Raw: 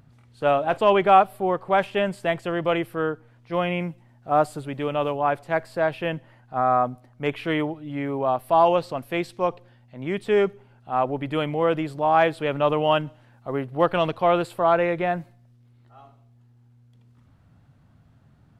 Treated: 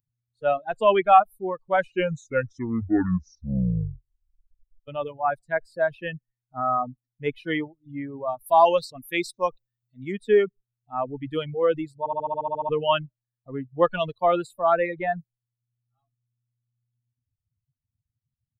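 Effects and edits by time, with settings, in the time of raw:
0:01.66: tape stop 3.22 s
0:08.46–0:10.12: high-shelf EQ 3,100 Hz +8.5 dB
0:11.99: stutter in place 0.07 s, 10 plays
whole clip: spectral dynamics exaggerated over time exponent 2; reverb reduction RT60 0.61 s; automatic gain control gain up to 5.5 dB; level −1.5 dB

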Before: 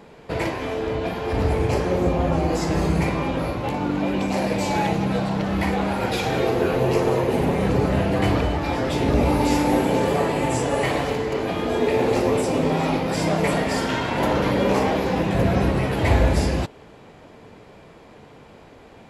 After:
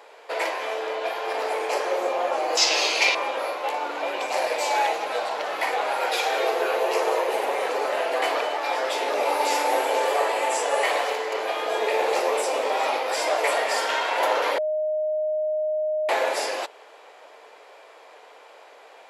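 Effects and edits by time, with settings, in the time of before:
0:02.57–0:03.15: flat-topped bell 3,900 Hz +15 dB
0:14.58–0:16.09: beep over 617 Hz −23 dBFS
whole clip: inverse Chebyshev high-pass filter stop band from 150 Hz, stop band 60 dB; level +2 dB

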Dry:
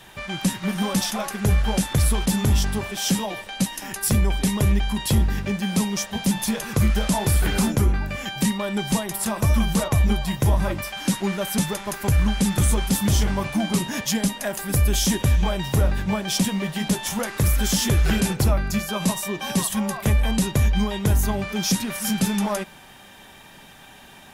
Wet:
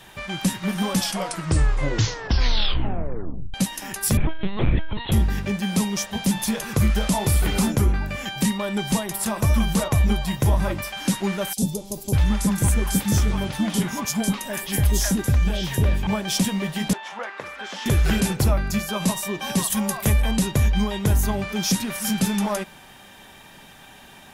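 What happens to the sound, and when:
0:00.94: tape stop 2.60 s
0:04.17–0:05.12: linear-prediction vocoder at 8 kHz pitch kept
0:07.10–0:07.62: notch filter 1,600 Hz, Q 7.6
0:11.53–0:16.07: three-band delay without the direct sound highs, lows, mids 40/600 ms, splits 650/4,000 Hz
0:16.93–0:17.86: band-pass filter 640–2,300 Hz
0:19.70–0:20.22: high-shelf EQ 6,100 Hz +8.5 dB

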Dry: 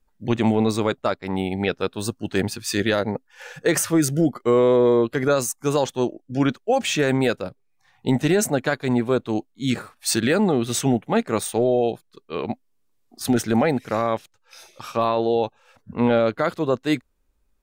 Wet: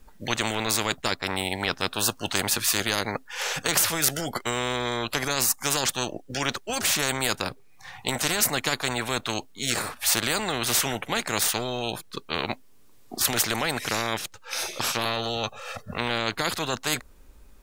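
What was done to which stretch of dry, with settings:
0:15.05–0:15.98: comb filter 1.6 ms, depth 84%
whole clip: dynamic equaliser 2,900 Hz, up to −4 dB, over −39 dBFS, Q 1.1; every bin compressed towards the loudest bin 4 to 1; level +3.5 dB

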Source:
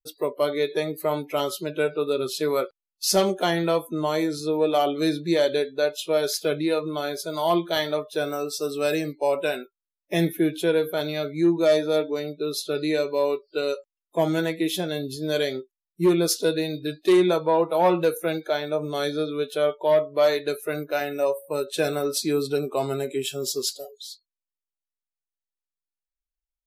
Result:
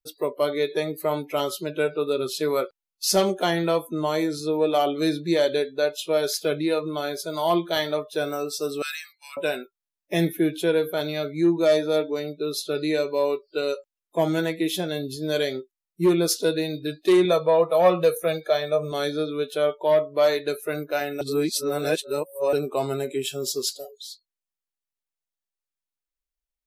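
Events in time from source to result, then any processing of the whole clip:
0:08.82–0:09.37: elliptic high-pass filter 1,300 Hz, stop band 60 dB
0:17.25–0:18.92: comb filter 1.7 ms, depth 60%
0:21.21–0:22.53: reverse

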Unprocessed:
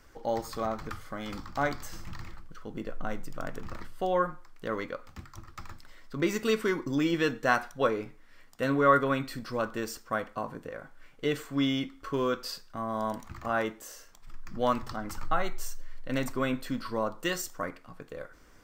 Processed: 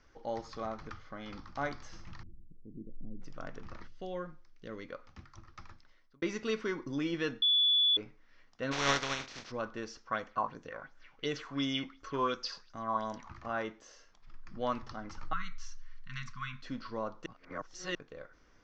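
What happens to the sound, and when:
0:00.93–0:01.45: low-pass filter 5,700 Hz
0:02.23–0:03.22: inverse Chebyshev low-pass filter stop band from 1,500 Hz, stop band 70 dB
0:03.88–0:04.89: parametric band 1,000 Hz −11.5 dB 1.7 octaves
0:05.60–0:06.22: fade out
0:07.42–0:07.97: beep over 3,440 Hz −17 dBFS
0:08.71–0:09.50: compressing power law on the bin magnitudes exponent 0.26
0:10.07–0:13.34: auto-filter bell 2.8 Hz 890–7,800 Hz +14 dB
0:13.87–0:14.70: notch filter 5,800 Hz
0:15.33–0:16.63: linear-phase brick-wall band-stop 230–1,000 Hz
0:17.26–0:17.95: reverse
whole clip: elliptic low-pass filter 6,100 Hz, stop band 50 dB; level −6 dB

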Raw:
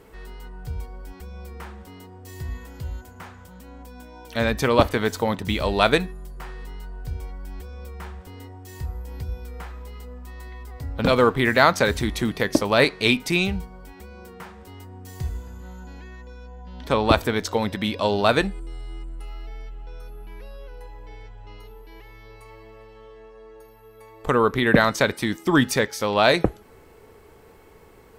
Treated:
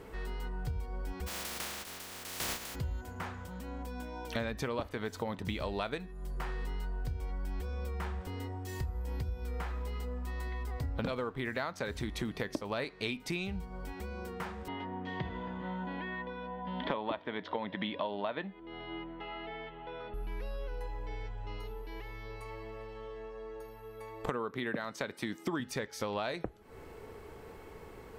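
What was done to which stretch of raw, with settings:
0:01.26–0:02.74: compressing power law on the bin magnitudes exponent 0.11
0:14.68–0:20.14: loudspeaker in its box 160–3,500 Hz, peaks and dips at 180 Hz +7 dB, 300 Hz +5 dB, 610 Hz +8 dB, 970 Hz +9 dB, 1,900 Hz +8 dB, 3,300 Hz +9 dB
0:24.26–0:25.60: high-pass filter 130 Hz
whole clip: high-shelf EQ 6,000 Hz −6.5 dB; downward compressor 16 to 1, threshold −33 dBFS; level +1 dB

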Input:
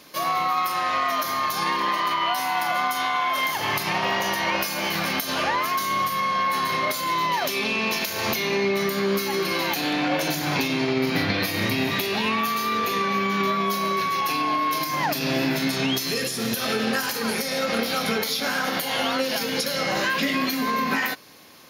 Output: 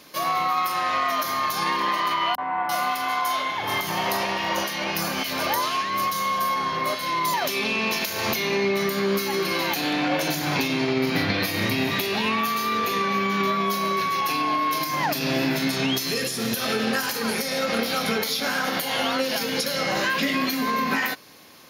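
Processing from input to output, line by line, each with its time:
0:02.35–0:07.34: three-band delay without the direct sound lows, mids, highs 30/340 ms, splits 180/1,900 Hz

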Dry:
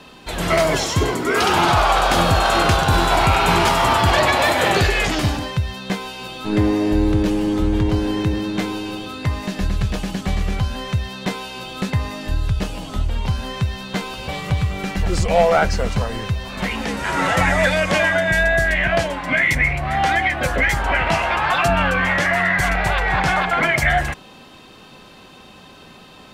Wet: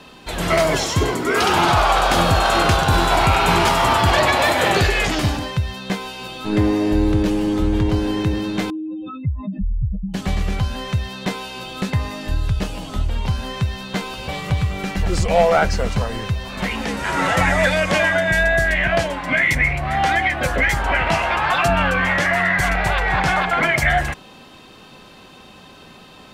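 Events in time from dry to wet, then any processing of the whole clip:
0:08.70–0:10.14: expanding power law on the bin magnitudes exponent 3.6

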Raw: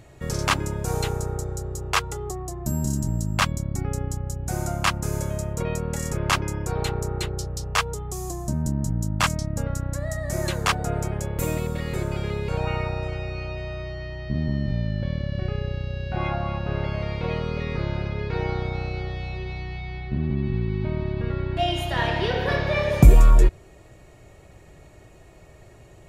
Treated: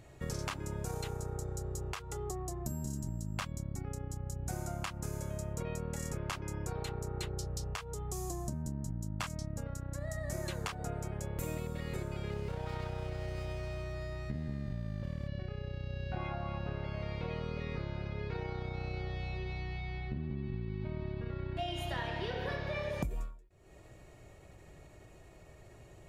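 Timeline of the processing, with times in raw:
0:12.31–0:15.28: windowed peak hold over 9 samples
whole clip: downward compressor 10 to 1, threshold −27 dBFS; every ending faded ahead of time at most 120 dB per second; level −6 dB

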